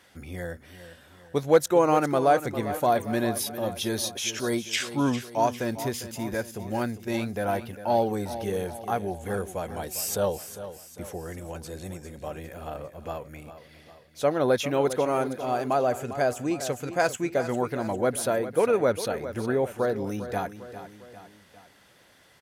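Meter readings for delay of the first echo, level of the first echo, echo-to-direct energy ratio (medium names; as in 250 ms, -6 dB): 402 ms, -12.5 dB, -11.0 dB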